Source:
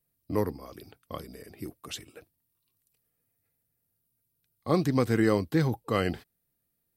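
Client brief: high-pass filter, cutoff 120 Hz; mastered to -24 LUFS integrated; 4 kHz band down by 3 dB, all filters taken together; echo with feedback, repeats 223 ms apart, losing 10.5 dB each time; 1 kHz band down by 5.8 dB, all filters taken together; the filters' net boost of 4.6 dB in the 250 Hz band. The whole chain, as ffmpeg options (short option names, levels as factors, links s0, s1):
-af "highpass=120,equalizer=f=250:t=o:g=7,equalizer=f=1000:t=o:g=-7.5,equalizer=f=4000:t=o:g=-3.5,aecho=1:1:223|446|669:0.299|0.0896|0.0269,volume=1.19"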